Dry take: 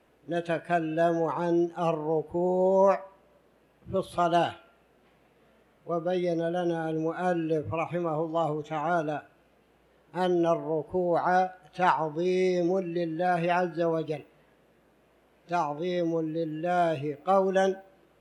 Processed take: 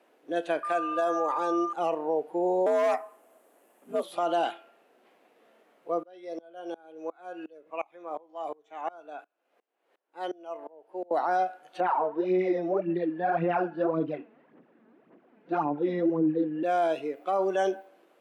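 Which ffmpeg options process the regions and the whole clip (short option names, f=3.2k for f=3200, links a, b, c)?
-filter_complex "[0:a]asettb=1/sr,asplit=3[a][b][c];[a]atrim=end=0.634[d];[b]atrim=start=0.63:end=1.73,asetpts=PTS-STARTPTS,afade=t=in:d=0.004:c=qsin,afade=t=out:st=1.096:d=0.004:c=qsin,highpass=f=350:p=1,equalizer=f=7.9k:w=1.1:g=6,aeval=exprs='val(0)+0.0316*sin(2*PI*1200*n/s)':c=same[e];[c]atrim=start=1.726[f];[d][e]acrossfade=d=0.004:c1=hsin:c2=qsin[g];[g][f]acrossfade=d=0.004:c1=qsin:c2=hsin,asettb=1/sr,asplit=3[h][i][j];[h]atrim=end=2.664[k];[i]atrim=start=2.66:end=4.03,asetpts=PTS-STARTPTS,afade=t=in:d=0.004:c=qsin,afade=t=out:st=1.366:d=0.004:c=qsin,highshelf=f=6.3k:t=q:w=1.5:g=11,asoftclip=type=hard:threshold=-20dB,afreqshift=67[l];[j]atrim=start=4.026[m];[k][l]acrossfade=d=0.004:c1=hsin:c2=qsin[n];[n][m]acrossfade=d=0.004:c1=qsin:c2=hsin,asettb=1/sr,asplit=3[o][p][q];[o]atrim=end=6.034[r];[p]atrim=start=6.03:end=11.11,asetpts=PTS-STARTPTS,afade=t=in:d=0.004:c=qsin,afade=t=out:st=5.076:d=0.004:c=qsin,highpass=f=540:p=1,highshelf=f=3.6k:g=-4.5,aeval=exprs='val(0)*pow(10,-27*if(lt(mod(-2.8*n/s,1),2*abs(-2.8)/1000),1-mod(-2.8*n/s,1)/(2*abs(-2.8)/1000),(mod(-2.8*n/s,1)-2*abs(-2.8)/1000)/(1-2*abs(-2.8)/1000))/20)':c=same[s];[q]atrim=start=11.106[t];[r][s]acrossfade=d=0.004:c1=hsin:c2=qsin[u];[u][t]acrossfade=d=0.004:c1=qsin:c2=hsin,asettb=1/sr,asplit=3[v][w][x];[v]atrim=end=11.804[y];[w]atrim=start=11.8:end=16.63,asetpts=PTS-STARTPTS,afade=t=in:d=0.004:c=qsin,afade=t=out:st=4.826:d=0.004:c=qsin,asubboost=boost=10.5:cutoff=200,aphaser=in_gain=1:out_gain=1:delay=4.7:decay=0.63:speed=1.8:type=sinusoidal,lowpass=1.8k[z];[x]atrim=start=16.626[aa];[y][z]acrossfade=d=0.004:c1=hsin:c2=qsin[ab];[ab][aa]acrossfade=d=0.004:c1=qsin:c2=hsin,highpass=f=260:w=0.5412,highpass=f=260:w=1.3066,equalizer=f=730:t=o:w=0.6:g=3,alimiter=limit=-18dB:level=0:latency=1:release=33"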